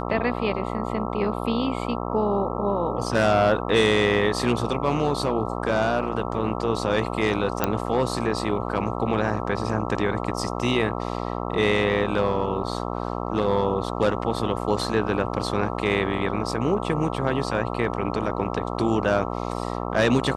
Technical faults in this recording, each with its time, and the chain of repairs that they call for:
buzz 60 Hz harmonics 22 -29 dBFS
7.64 s: pop -6 dBFS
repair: de-click; de-hum 60 Hz, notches 22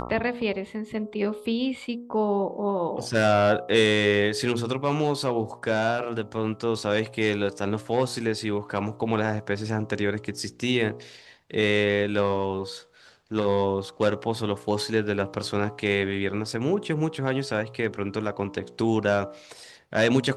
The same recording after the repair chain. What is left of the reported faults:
nothing left

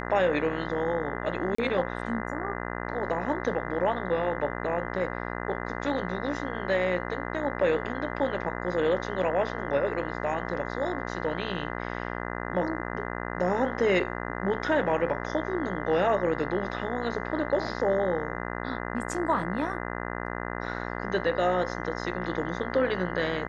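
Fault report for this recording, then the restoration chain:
buzz 60 Hz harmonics 34 -34 dBFS
1.55–1.58 s: dropout 34 ms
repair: de-hum 60 Hz, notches 34; interpolate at 1.55 s, 34 ms

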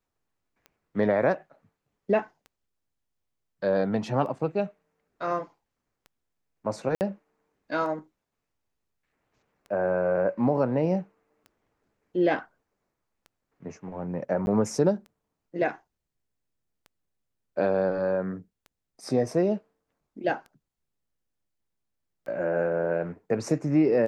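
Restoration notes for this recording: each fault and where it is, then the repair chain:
tick 33 1/3 rpm -32 dBFS
6.95–7.01 s: dropout 59 ms
14.46–14.47 s: dropout 11 ms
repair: de-click; interpolate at 6.95 s, 59 ms; interpolate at 14.46 s, 11 ms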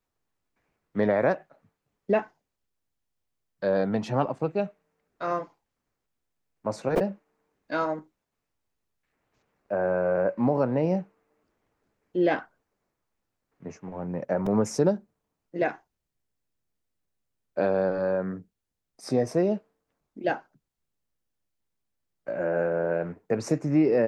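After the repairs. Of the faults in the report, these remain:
nothing left

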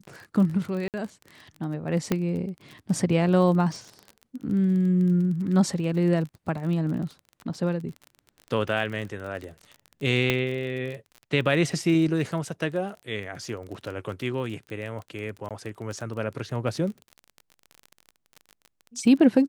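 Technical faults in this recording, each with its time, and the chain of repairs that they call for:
crackle 31 per s -33 dBFS
0.88–0.94 s: dropout 58 ms
2.12 s: pop -10 dBFS
10.30 s: pop -9 dBFS
15.49–15.51 s: dropout 17 ms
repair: de-click; interpolate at 0.88 s, 58 ms; interpolate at 15.49 s, 17 ms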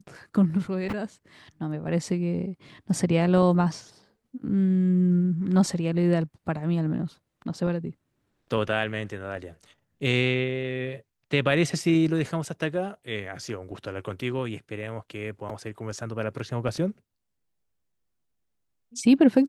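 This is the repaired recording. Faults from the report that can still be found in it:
10.30 s: pop

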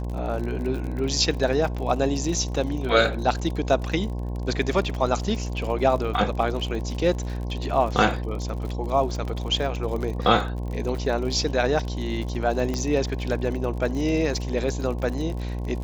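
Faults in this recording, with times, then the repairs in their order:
buzz 60 Hz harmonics 18 -29 dBFS
crackle 50 per s -31 dBFS
12.74 s: pop -15 dBFS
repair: de-click; de-hum 60 Hz, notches 18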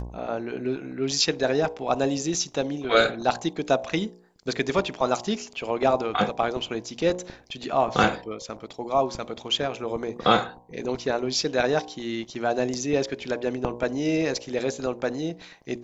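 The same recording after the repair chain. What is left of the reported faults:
12.74 s: pop

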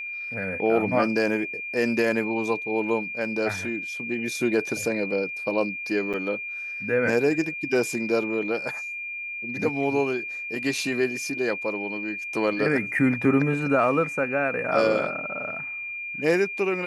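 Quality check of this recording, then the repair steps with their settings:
whine 2.4 kHz -31 dBFS
6.13–6.14 s: dropout 7.3 ms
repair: band-stop 2.4 kHz, Q 30; interpolate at 6.13 s, 7.3 ms

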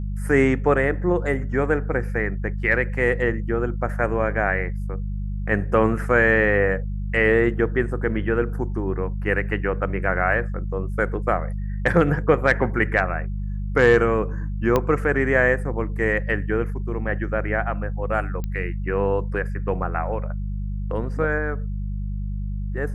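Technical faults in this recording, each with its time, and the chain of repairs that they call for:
hum 50 Hz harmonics 4 -27 dBFS
14.76 s: pop -7 dBFS
18.44 s: pop -17 dBFS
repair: de-click; de-hum 50 Hz, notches 4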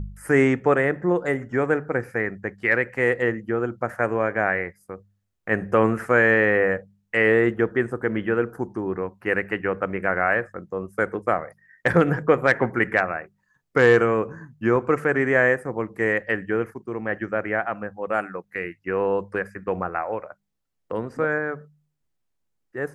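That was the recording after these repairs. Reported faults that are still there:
14.76 s: pop

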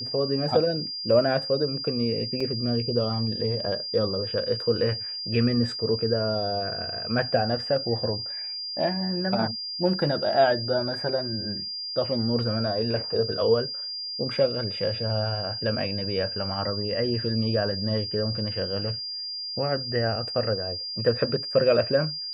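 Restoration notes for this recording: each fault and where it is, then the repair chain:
whine 4.8 kHz -31 dBFS
2.40 s: dropout 4.6 ms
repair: band-stop 4.8 kHz, Q 30; interpolate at 2.40 s, 4.6 ms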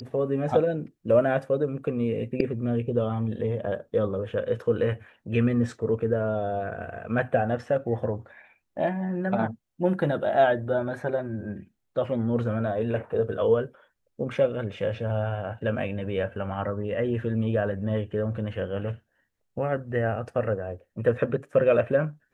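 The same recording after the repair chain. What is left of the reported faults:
nothing left

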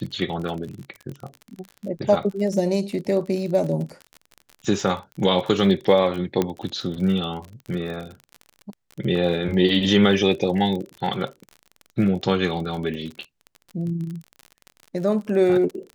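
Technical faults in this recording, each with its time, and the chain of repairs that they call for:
crackle 39 per s -30 dBFS
6.42 s: pop -9 dBFS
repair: de-click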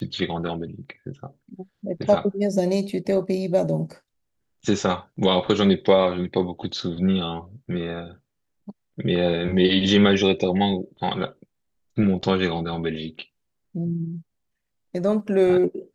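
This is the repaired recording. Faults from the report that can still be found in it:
nothing left

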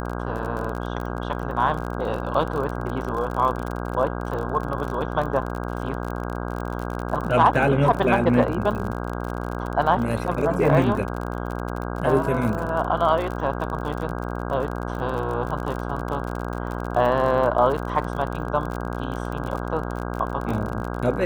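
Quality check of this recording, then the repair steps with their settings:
buzz 60 Hz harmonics 27 -29 dBFS
crackle 42 per s -28 dBFS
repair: de-click; de-hum 60 Hz, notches 27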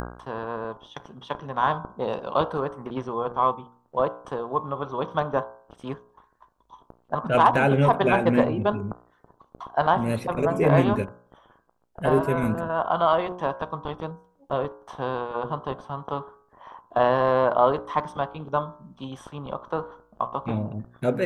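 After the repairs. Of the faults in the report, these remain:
nothing left

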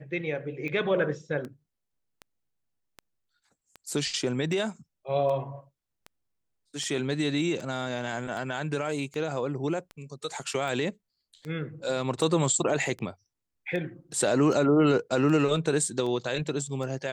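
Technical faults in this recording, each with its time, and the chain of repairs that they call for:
tick 78 rpm -25 dBFS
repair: de-click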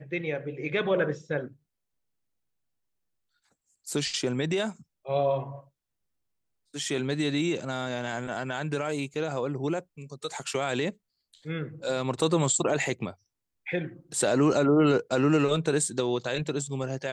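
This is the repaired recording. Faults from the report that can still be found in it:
nothing left

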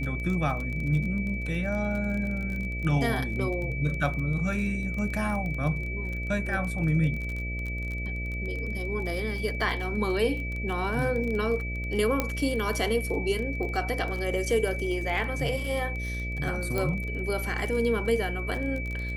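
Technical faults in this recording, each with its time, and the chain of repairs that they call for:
buzz 60 Hz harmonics 11 -33 dBFS
crackle 27 per s -32 dBFS
whine 2.3 kHz -35 dBFS
12.20 s: pop -11 dBFS
16.78 s: pop -15 dBFS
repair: de-click; band-stop 2.3 kHz, Q 30; de-hum 60 Hz, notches 11

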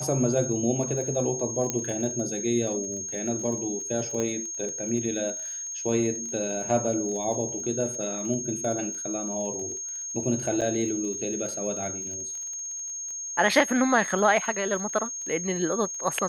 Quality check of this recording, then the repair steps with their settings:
crackle 26 per s -35 dBFS
whine 6.5 kHz -32 dBFS
1.70 s: pop -11 dBFS
4.20 s: pop -17 dBFS
10.61–10.62 s: dropout 6.8 ms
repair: de-click; band-stop 6.5 kHz, Q 30; interpolate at 10.61 s, 6.8 ms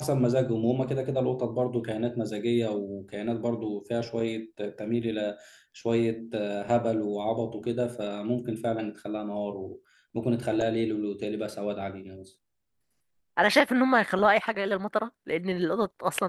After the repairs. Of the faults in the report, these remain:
nothing left

